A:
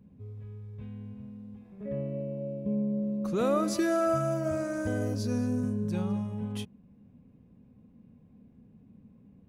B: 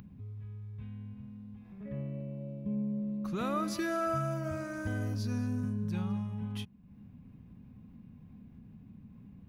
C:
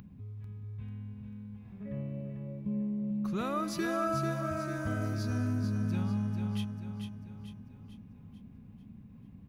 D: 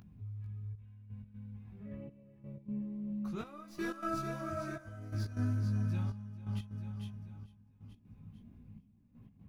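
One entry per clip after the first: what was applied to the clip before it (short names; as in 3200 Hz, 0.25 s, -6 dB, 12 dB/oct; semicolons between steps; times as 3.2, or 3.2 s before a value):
graphic EQ 250/500/8000 Hz -3/-12/-9 dB; upward compressor, threshold -43 dBFS
feedback echo 0.443 s, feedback 47%, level -6.5 dB
tracing distortion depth 0.04 ms; step gate "xxxxxx...x." 123 bpm -12 dB; chorus voices 6, 0.89 Hz, delay 19 ms, depth 1.7 ms; gain -2 dB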